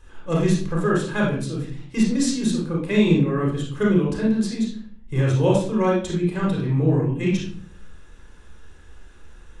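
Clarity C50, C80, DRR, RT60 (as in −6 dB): 2.5 dB, 8.5 dB, −3.5 dB, 0.50 s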